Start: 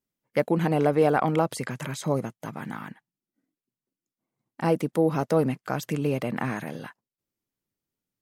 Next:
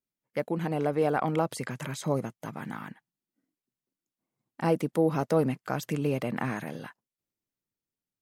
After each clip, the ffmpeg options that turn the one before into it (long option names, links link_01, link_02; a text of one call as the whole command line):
ffmpeg -i in.wav -af "dynaudnorm=framelen=270:gausssize=9:maxgain=5dB,volume=-7dB" out.wav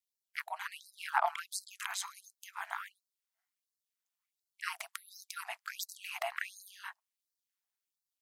ffmpeg -i in.wav -af "aeval=exprs='val(0)*sin(2*PI*96*n/s)':channel_layout=same,afftfilt=real='re*gte(b*sr/1024,610*pow(4000/610,0.5+0.5*sin(2*PI*1.4*pts/sr)))':imag='im*gte(b*sr/1024,610*pow(4000/610,0.5+0.5*sin(2*PI*1.4*pts/sr)))':win_size=1024:overlap=0.75,volume=5dB" out.wav